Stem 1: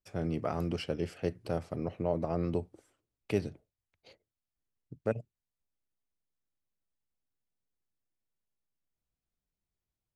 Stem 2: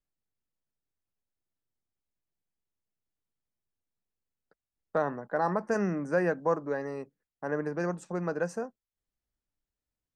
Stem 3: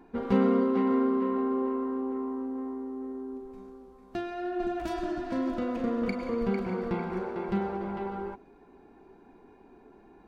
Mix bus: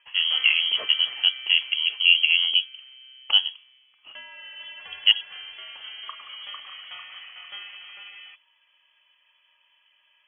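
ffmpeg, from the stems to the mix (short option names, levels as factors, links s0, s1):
-filter_complex "[0:a]equalizer=f=680:t=o:w=2.6:g=14,volume=1.19[s0];[2:a]equalizer=f=2300:t=o:w=2.5:g=14.5,volume=0.224[s1];[s0][s1]amix=inputs=2:normalize=0,lowpass=f=2900:t=q:w=0.5098,lowpass=f=2900:t=q:w=0.6013,lowpass=f=2900:t=q:w=0.9,lowpass=f=2900:t=q:w=2.563,afreqshift=-3400"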